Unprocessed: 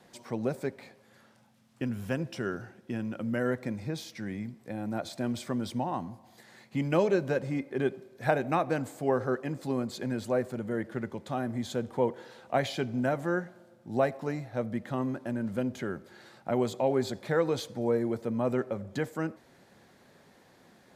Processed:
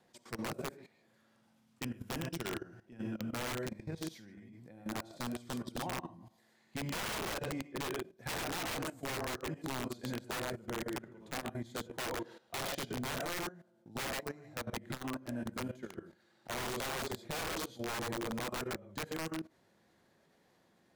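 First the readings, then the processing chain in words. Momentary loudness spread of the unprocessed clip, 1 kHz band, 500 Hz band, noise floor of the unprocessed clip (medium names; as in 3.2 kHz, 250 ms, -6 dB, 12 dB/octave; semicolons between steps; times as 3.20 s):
9 LU, -6.5 dB, -12.5 dB, -61 dBFS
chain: gated-style reverb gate 160 ms rising, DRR 2 dB; integer overflow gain 22.5 dB; level held to a coarse grid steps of 16 dB; trim -6 dB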